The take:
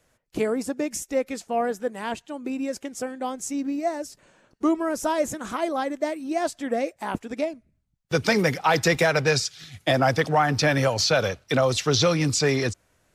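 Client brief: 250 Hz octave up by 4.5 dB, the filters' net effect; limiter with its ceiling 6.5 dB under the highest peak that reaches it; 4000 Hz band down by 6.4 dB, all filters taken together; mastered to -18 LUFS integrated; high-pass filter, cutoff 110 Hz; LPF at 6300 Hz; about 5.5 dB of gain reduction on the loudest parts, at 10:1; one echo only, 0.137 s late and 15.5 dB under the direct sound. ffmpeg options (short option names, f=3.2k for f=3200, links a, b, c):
-af "highpass=110,lowpass=6.3k,equalizer=f=250:t=o:g=6,equalizer=f=4k:t=o:g=-7,acompressor=threshold=-20dB:ratio=10,alimiter=limit=-17.5dB:level=0:latency=1,aecho=1:1:137:0.168,volume=10dB"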